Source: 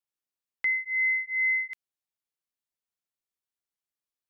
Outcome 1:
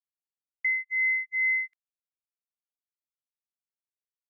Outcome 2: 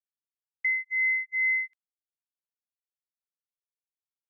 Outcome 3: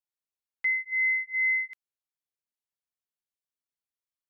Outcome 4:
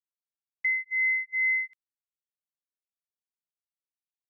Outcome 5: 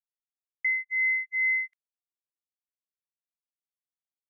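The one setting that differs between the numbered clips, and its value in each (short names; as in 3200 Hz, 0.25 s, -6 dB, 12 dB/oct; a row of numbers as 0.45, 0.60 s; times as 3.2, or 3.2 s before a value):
gate, range: -45, -32, -6, -20, -59 dB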